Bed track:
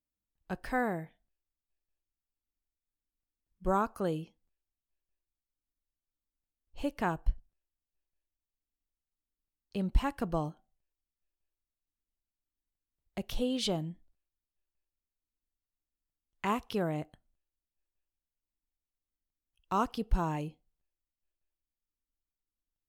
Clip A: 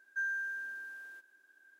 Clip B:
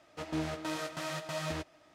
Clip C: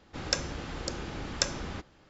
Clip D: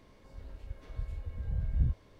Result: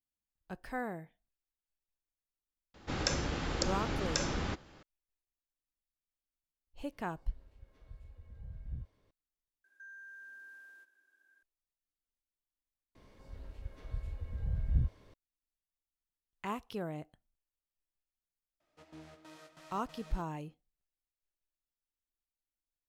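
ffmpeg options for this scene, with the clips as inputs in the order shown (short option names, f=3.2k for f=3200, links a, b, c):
-filter_complex "[4:a]asplit=2[a][b];[0:a]volume=-7dB[c];[3:a]alimiter=level_in=13.5dB:limit=-1dB:release=50:level=0:latency=1[d];[1:a]alimiter=level_in=16.5dB:limit=-24dB:level=0:latency=1:release=216,volume=-16.5dB[e];[c]asplit=3[f][g][h];[f]atrim=end=9.644[i];[e]atrim=end=1.79,asetpts=PTS-STARTPTS,volume=-7dB[j];[g]atrim=start=11.426:end=12.954[k];[b]atrim=end=2.19,asetpts=PTS-STARTPTS,volume=-1.5dB[l];[h]atrim=start=15.136[m];[d]atrim=end=2.09,asetpts=PTS-STARTPTS,volume=-11dB,afade=t=in:d=0.004:c=hsin,afade=t=out:st=2.086:d=0.004:c=hsin,adelay=2740[n];[a]atrim=end=2.19,asetpts=PTS-STARTPTS,volume=-14dB,afade=t=in:d=0.004:c=hsin,afade=t=out:st=2.186:d=0.004:c=hsin,adelay=6920[o];[2:a]atrim=end=1.94,asetpts=PTS-STARTPTS,volume=-18dB,afade=t=in:d=0.004:c=hsin,afade=t=out:st=1.936:d=0.004:c=hsin,adelay=820260S[p];[i][j]acrossfade=d=0.004:c1=hsin:c2=hsin[q];[q][k]acrossfade=d=0.004:c1=hsin:c2=hsin[r];[r][l]acrossfade=d=0.004:c1=hsin:c2=hsin[s];[s][m]acrossfade=d=0.004:c1=hsin:c2=hsin[t];[t][n][o][p]amix=inputs=4:normalize=0"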